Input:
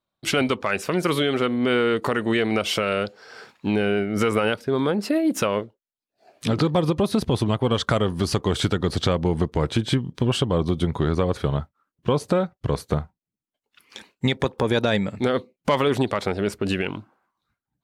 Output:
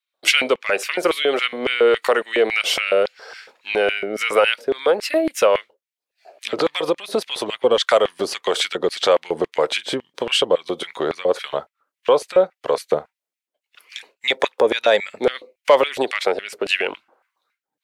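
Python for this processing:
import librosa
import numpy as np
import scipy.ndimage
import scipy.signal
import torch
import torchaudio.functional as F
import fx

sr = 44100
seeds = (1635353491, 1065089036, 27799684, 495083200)

y = fx.harmonic_tremolo(x, sr, hz=1.7, depth_pct=50, crossover_hz=560.0)
y = fx.filter_lfo_highpass(y, sr, shape='square', hz=3.6, low_hz=520.0, high_hz=2200.0, q=2.4)
y = y * librosa.db_to_amplitude(5.5)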